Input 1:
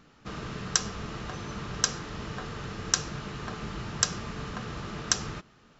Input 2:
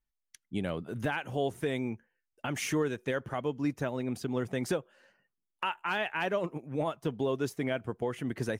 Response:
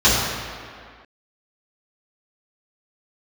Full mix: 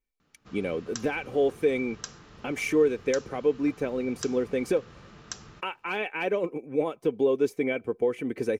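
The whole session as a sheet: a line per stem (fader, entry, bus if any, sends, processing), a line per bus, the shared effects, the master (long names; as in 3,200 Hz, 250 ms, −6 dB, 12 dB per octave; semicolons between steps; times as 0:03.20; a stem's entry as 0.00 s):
−12.5 dB, 0.20 s, no send, no processing
−3.0 dB, 0.00 s, no send, comb filter 3.9 ms, depth 40%; hollow resonant body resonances 410/2,300 Hz, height 15 dB, ringing for 25 ms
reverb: not used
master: no processing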